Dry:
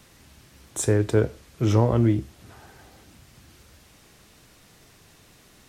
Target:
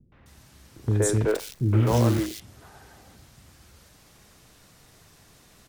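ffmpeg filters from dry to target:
-filter_complex "[0:a]asettb=1/sr,asplit=3[s0][s1][s2];[s0]atrim=end=1.024[s3];[s1]atrim=start=1.02:end=2.14,asetpts=PTS-STARTPTS,afade=t=in:d=0.004:c=qsin,afade=t=out:st=1.116:d=0.004:c=qsin,acrusher=bits=6:dc=4:mix=0:aa=0.000001[s4];[s2]atrim=start=2.136[s5];[s3][s4]acrossfade=d=0.004:c1=hsin:c2=qsin[s6];[s6][s5]acrossfade=d=0.004:c1=qsin:c2=hsin,acrossover=split=320|2600[s7][s8][s9];[s8]adelay=120[s10];[s9]adelay=260[s11];[s7][s10][s11]amix=inputs=3:normalize=0"

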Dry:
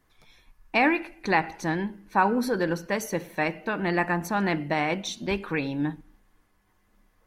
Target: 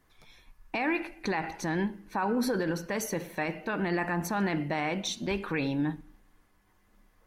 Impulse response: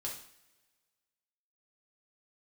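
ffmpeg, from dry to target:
-filter_complex "[0:a]alimiter=limit=0.0891:level=0:latency=1:release=37,asplit=2[s0][s1];[1:a]atrim=start_sample=2205[s2];[s1][s2]afir=irnorm=-1:irlink=0,volume=0.0944[s3];[s0][s3]amix=inputs=2:normalize=0"

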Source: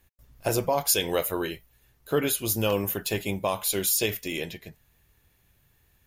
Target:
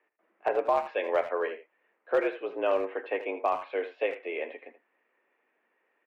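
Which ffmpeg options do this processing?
-filter_complex "[0:a]highpass=f=270:t=q:w=0.5412,highpass=f=270:t=q:w=1.307,lowpass=f=2300:t=q:w=0.5176,lowpass=f=2300:t=q:w=0.7071,lowpass=f=2300:t=q:w=1.932,afreqshift=78,asplit=2[s0][s1];[s1]adelay=80,highpass=300,lowpass=3400,asoftclip=type=hard:threshold=0.0794,volume=0.251[s2];[s0][s2]amix=inputs=2:normalize=0,asoftclip=type=hard:threshold=0.15"

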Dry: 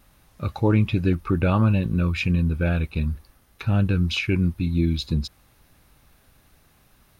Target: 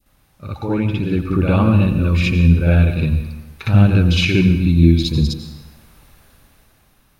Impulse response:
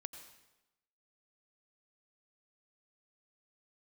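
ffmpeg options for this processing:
-filter_complex "[0:a]dynaudnorm=f=210:g=11:m=3.76,asplit=2[s0][s1];[1:a]atrim=start_sample=2205,adelay=60[s2];[s1][s2]afir=irnorm=-1:irlink=0,volume=2.99[s3];[s0][s3]amix=inputs=2:normalize=0,adynamicequalizer=threshold=0.0398:dfrequency=1300:dqfactor=0.83:tfrequency=1300:tqfactor=0.83:attack=5:release=100:ratio=0.375:range=2:mode=cutabove:tftype=bell,volume=0.447"

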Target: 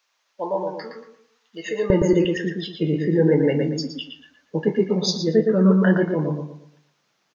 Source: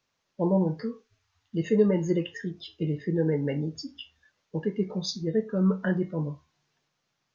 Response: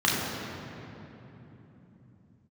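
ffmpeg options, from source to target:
-filter_complex "[0:a]asetnsamples=n=441:p=0,asendcmd='1.9 highpass f 180',highpass=780,asplit=2[s0][s1];[s1]adelay=116,lowpass=f=2700:p=1,volume=0.668,asplit=2[s2][s3];[s3]adelay=116,lowpass=f=2700:p=1,volume=0.35,asplit=2[s4][s5];[s5]adelay=116,lowpass=f=2700:p=1,volume=0.35,asplit=2[s6][s7];[s7]adelay=116,lowpass=f=2700:p=1,volume=0.35,asplit=2[s8][s9];[s9]adelay=116,lowpass=f=2700:p=1,volume=0.35[s10];[s0][s2][s4][s6][s8][s10]amix=inputs=6:normalize=0,volume=2.66"

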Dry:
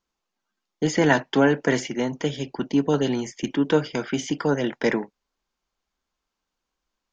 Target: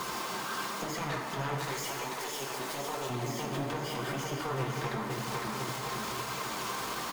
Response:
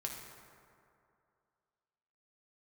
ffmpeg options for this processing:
-filter_complex "[0:a]aeval=exprs='val(0)+0.5*0.0891*sgn(val(0))':c=same,aeval=exprs='0.668*(cos(1*acos(clip(val(0)/0.668,-1,1)))-cos(1*PI/2))+0.211*(cos(3*acos(clip(val(0)/0.668,-1,1)))-cos(3*PI/2))+0.119*(cos(5*acos(clip(val(0)/0.668,-1,1)))-cos(5*PI/2))+0.237*(cos(6*acos(clip(val(0)/0.668,-1,1)))-cos(6*PI/2))':c=same,highpass=120,aecho=1:1:506|1012|1518|2024|2530|3036:0.422|0.211|0.105|0.0527|0.0264|0.0132,acrossover=split=240|1400[s0][s1][s2];[s1]acompressor=mode=upward:threshold=0.0447:ratio=2.5[s3];[s0][s3][s2]amix=inputs=3:normalize=0,asettb=1/sr,asplit=3[s4][s5][s6];[s4]atrim=end=1.584[s7];[s5]atrim=start=1.58:end=3.1,asetpts=PTS-STARTPTS,afade=t=in:d=0.004:c=qsin,afade=t=out:st=1.516:d=0.004:c=qsin,bass=f=250:g=-14,treble=f=4000:g=9[s8];[s6]atrim=start=3.096[s9];[s7][s8]acrossfade=d=0.004:c1=hsin:c2=qsin[s10];[s10][s9]acrossfade=d=0.004:c1=qsin:c2=hsin,asplit=2[s11][s12];[s12]aeval=exprs='clip(val(0),-1,0.0631)':c=same,volume=0.562[s13];[s11][s13]amix=inputs=2:normalize=0,alimiter=limit=0.224:level=0:latency=1:release=273[s14];[1:a]atrim=start_sample=2205[s15];[s14][s15]afir=irnorm=-1:irlink=0,flanger=delay=0.7:depth=6.9:regen=-48:speed=0.95:shape=triangular,equalizer=f=1100:w=5.4:g=7.5,bandreject=f=6000:w=27,volume=0.398"

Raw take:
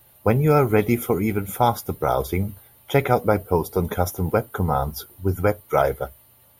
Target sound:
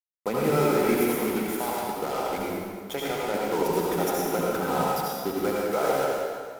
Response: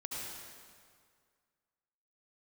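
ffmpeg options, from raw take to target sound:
-filter_complex "[0:a]highpass=f=200:w=0.5412,highpass=f=200:w=1.3066,asettb=1/sr,asplit=3[s0][s1][s2];[s0]atrim=end=1.054[s3];[s1]atrim=start=1.05:end=3.34,asetpts=PTS-STARTPTS,afade=t=in:d=0.004:c=qsin,afade=t=out:st=2.286:d=0.004:c=qsin,acompressor=threshold=0.0562:ratio=4[s4];[s2]atrim=start=3.336[s5];[s3][s4]acrossfade=d=0.004:c1=hsin:c2=qsin[s6];[s6][s5]acrossfade=d=0.004:c1=qsin:c2=hsin,alimiter=limit=0.224:level=0:latency=1:release=34,acrusher=bits=4:mix=0:aa=0.5[s7];[1:a]atrim=start_sample=2205[s8];[s7][s8]afir=irnorm=-1:irlink=0"

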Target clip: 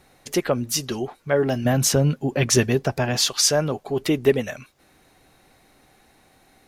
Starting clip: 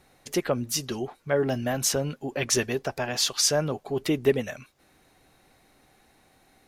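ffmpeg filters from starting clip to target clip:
-filter_complex "[0:a]asettb=1/sr,asplit=3[s0][s1][s2];[s0]atrim=end=1.654[s3];[s1]atrim=start=1.65:end=3.25,asetpts=PTS-STARTPTS,afade=t=in:d=0.004:c=qsin,afade=t=out:st=1.596:d=0.004:c=qsin,equalizer=f=130:w=0.58:g=9[s4];[s2]atrim=start=3.246[s5];[s3][s4]acrossfade=d=0.004:c1=hsin:c2=qsin[s6];[s6][s5]acrossfade=d=0.004:c1=qsin:c2=hsin,volume=1.58"

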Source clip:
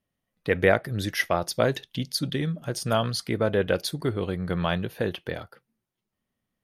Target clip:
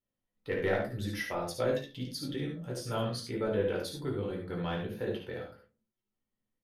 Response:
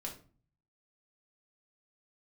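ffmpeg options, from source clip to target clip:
-filter_complex "[0:a]asoftclip=type=tanh:threshold=0.422,aecho=1:1:57|71:0.376|0.473[s0];[1:a]atrim=start_sample=2205,asetrate=74970,aresample=44100[s1];[s0][s1]afir=irnorm=-1:irlink=0,volume=0.596"

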